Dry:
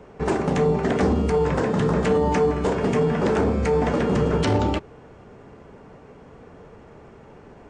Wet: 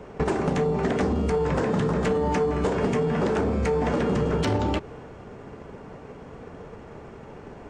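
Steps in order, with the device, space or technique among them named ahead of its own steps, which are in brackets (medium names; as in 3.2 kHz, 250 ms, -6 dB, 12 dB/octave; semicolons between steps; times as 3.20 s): drum-bus smash (transient shaper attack +6 dB, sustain +2 dB; compression, threshold -22 dBFS, peak gain reduction 8.5 dB; saturation -18 dBFS, distortion -20 dB); trim +3 dB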